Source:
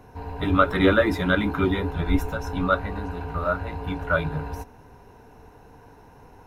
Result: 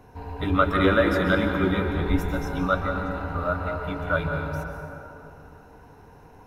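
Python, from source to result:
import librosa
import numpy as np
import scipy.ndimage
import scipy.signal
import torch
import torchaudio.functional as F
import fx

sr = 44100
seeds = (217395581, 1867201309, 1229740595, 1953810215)

y = fx.rev_plate(x, sr, seeds[0], rt60_s=2.9, hf_ratio=0.45, predelay_ms=115, drr_db=4.0)
y = y * librosa.db_to_amplitude(-2.0)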